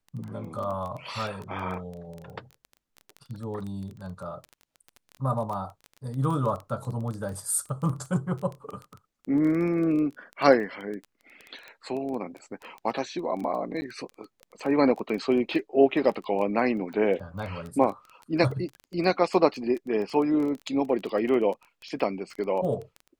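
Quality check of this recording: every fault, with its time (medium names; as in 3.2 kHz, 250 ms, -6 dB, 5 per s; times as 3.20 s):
crackle 13 per s -32 dBFS
13.81–13.82 s: dropout 10 ms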